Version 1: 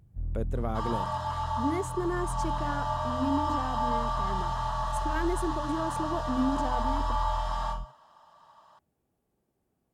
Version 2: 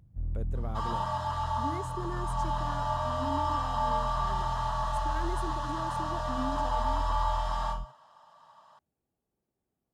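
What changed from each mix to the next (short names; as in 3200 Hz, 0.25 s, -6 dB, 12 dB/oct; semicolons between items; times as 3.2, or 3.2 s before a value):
speech -8.0 dB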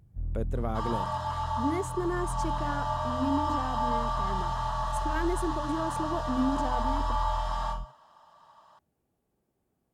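speech +8.0 dB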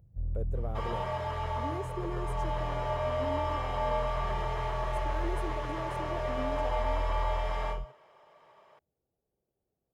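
speech -6.5 dB; second sound: remove fixed phaser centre 920 Hz, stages 4; master: add graphic EQ 250/500/1000/2000/4000/8000 Hz -7/+6/-5/-6/-8/-7 dB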